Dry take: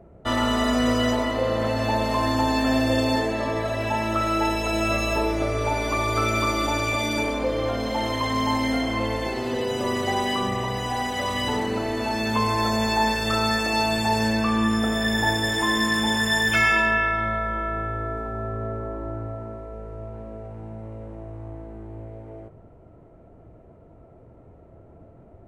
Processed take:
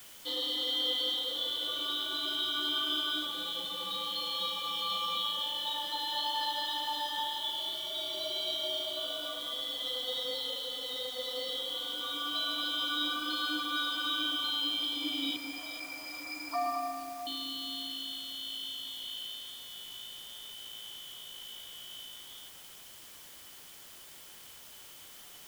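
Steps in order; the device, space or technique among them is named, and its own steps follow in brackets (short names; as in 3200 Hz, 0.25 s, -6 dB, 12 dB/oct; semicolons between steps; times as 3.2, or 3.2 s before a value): 15.36–17.27 Chebyshev high-pass 2100 Hz, order 5; split-band scrambled radio (four-band scrambler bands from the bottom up 2413; BPF 320–2800 Hz; white noise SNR 15 dB); echo with dull and thin repeats by turns 0.217 s, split 2300 Hz, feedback 53%, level -7 dB; gain -7 dB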